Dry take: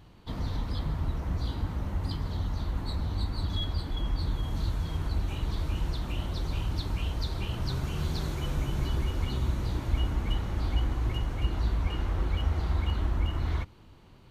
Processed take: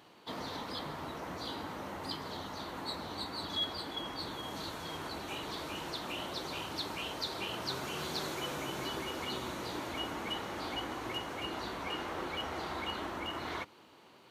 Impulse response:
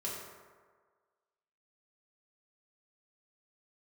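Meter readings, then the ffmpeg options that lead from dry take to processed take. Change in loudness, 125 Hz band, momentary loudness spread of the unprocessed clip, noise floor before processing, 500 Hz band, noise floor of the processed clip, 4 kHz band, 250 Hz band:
-6.5 dB, -19.5 dB, 4 LU, -53 dBFS, +1.5 dB, -59 dBFS, +3.0 dB, -4.5 dB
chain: -af "highpass=370,volume=1.41"

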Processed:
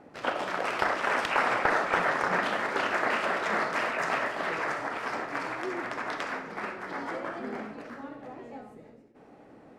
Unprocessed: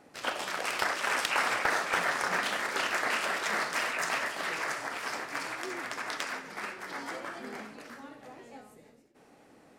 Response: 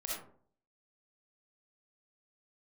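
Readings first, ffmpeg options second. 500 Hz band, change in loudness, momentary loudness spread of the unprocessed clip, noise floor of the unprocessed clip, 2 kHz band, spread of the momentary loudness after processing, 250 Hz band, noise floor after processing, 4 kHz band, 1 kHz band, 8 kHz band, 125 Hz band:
+6.0 dB, +2.0 dB, 17 LU, -59 dBFS, +1.0 dB, 16 LU, +6.5 dB, -54 dBFS, -3.5 dB, +4.0 dB, -9.0 dB, +6.5 dB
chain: -filter_complex "[0:a]lowpass=f=1100:p=1,asplit=2[s0][s1];[1:a]atrim=start_sample=2205[s2];[s1][s2]afir=irnorm=-1:irlink=0,volume=0.316[s3];[s0][s3]amix=inputs=2:normalize=0,volume=1.78"

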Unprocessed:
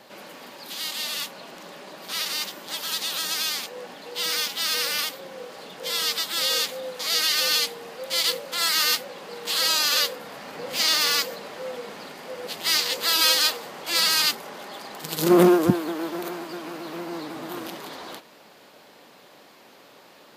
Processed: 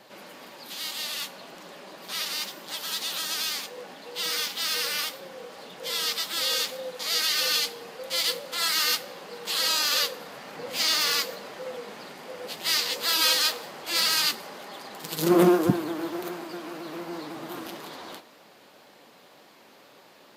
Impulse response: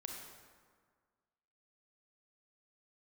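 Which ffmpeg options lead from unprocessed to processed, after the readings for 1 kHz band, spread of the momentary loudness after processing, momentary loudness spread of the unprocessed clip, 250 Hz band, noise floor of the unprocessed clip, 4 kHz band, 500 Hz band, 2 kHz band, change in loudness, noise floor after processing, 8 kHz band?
-2.5 dB, 19 LU, 19 LU, -2.5 dB, -51 dBFS, -2.5 dB, -3.0 dB, -2.5 dB, -3.0 dB, -54 dBFS, -3.0 dB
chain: -filter_complex "[0:a]flanger=delay=4.9:depth=6.9:regen=-47:speed=1.9:shape=triangular,asplit=2[s0][s1];[1:a]atrim=start_sample=2205[s2];[s1][s2]afir=irnorm=-1:irlink=0,volume=0.266[s3];[s0][s3]amix=inputs=2:normalize=0"

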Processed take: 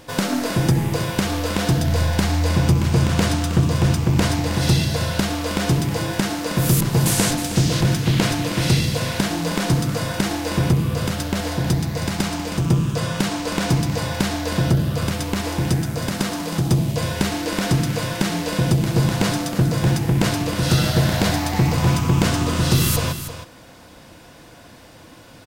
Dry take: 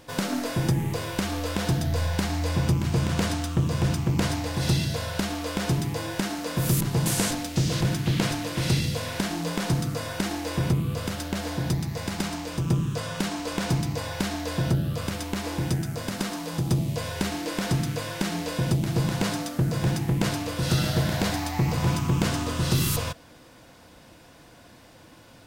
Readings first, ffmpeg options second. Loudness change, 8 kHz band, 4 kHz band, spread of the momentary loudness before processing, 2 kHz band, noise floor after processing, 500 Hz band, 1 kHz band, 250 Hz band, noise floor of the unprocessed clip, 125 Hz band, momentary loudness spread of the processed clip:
+6.5 dB, +6.5 dB, +6.5 dB, 6 LU, +6.5 dB, -45 dBFS, +6.5 dB, +6.5 dB, +6.5 dB, -51 dBFS, +6.5 dB, 6 LU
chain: -af "aecho=1:1:317:0.282,volume=2"

